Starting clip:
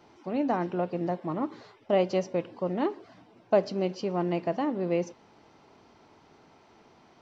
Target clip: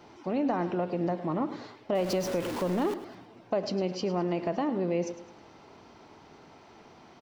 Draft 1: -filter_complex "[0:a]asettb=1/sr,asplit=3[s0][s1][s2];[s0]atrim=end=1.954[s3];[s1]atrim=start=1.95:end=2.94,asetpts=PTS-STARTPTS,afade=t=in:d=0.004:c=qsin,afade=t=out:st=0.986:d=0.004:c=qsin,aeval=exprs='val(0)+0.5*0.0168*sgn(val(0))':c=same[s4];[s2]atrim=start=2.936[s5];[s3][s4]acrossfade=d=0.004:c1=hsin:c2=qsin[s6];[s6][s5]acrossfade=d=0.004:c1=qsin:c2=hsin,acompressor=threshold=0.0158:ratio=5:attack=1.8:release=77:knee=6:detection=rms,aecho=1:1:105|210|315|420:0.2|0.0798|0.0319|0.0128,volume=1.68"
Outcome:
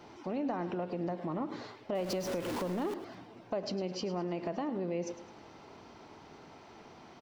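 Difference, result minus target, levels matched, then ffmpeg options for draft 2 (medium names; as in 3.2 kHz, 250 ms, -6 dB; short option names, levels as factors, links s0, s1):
compression: peak gain reduction +6.5 dB
-filter_complex "[0:a]asettb=1/sr,asplit=3[s0][s1][s2];[s0]atrim=end=1.954[s3];[s1]atrim=start=1.95:end=2.94,asetpts=PTS-STARTPTS,afade=t=in:d=0.004:c=qsin,afade=t=out:st=0.986:d=0.004:c=qsin,aeval=exprs='val(0)+0.5*0.0168*sgn(val(0))':c=same[s4];[s2]atrim=start=2.936[s5];[s3][s4]acrossfade=d=0.004:c1=hsin:c2=qsin[s6];[s6][s5]acrossfade=d=0.004:c1=qsin:c2=hsin,acompressor=threshold=0.0398:ratio=5:attack=1.8:release=77:knee=6:detection=rms,aecho=1:1:105|210|315|420:0.2|0.0798|0.0319|0.0128,volume=1.68"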